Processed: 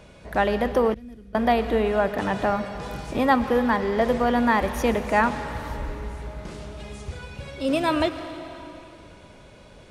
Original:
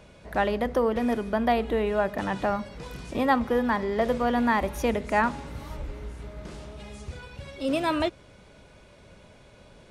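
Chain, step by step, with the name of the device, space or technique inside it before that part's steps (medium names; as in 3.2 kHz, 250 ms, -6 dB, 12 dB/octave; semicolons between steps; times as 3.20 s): saturated reverb return (on a send at -7 dB: reverberation RT60 2.6 s, pre-delay 98 ms + saturation -26 dBFS, distortion -10 dB); 0.94–1.35 s: on the sum: amplifier tone stack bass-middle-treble 10-0-1; trim +3 dB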